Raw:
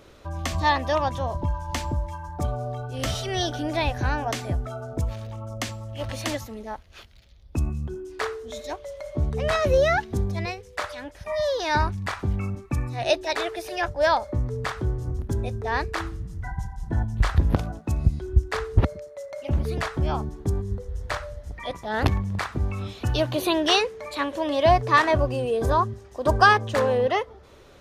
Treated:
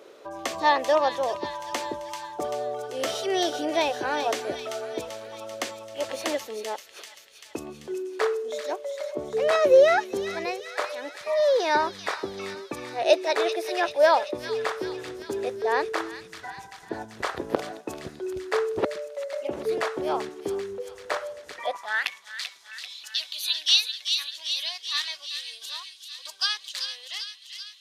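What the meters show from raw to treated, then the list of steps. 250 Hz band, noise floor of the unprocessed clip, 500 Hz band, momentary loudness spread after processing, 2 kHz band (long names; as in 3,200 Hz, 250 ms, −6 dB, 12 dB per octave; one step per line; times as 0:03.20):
−5.0 dB, −49 dBFS, +1.5 dB, 16 LU, −2.5 dB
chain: high-pass filter sweep 420 Hz → 3,900 Hz, 0:21.56–0:22.23
on a send: delay with a high-pass on its return 389 ms, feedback 63%, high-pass 2,300 Hz, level −6 dB
on the sum: level −1 dB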